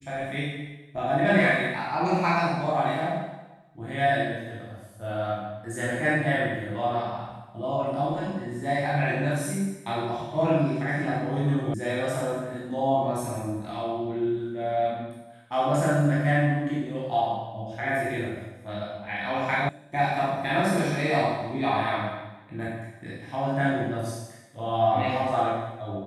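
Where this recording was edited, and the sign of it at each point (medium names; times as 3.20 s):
11.74 s: sound stops dead
19.69 s: sound stops dead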